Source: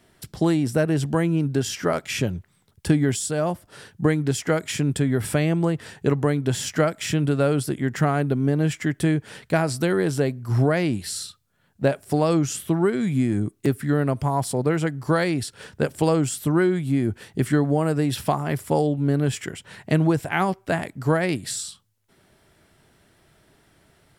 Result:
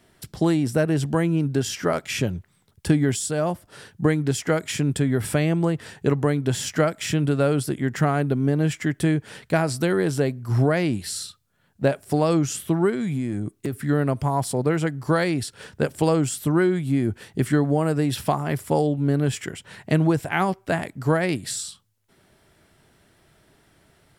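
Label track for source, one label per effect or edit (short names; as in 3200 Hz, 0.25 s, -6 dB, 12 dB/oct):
12.900000	13.730000	compressor 5:1, threshold -22 dBFS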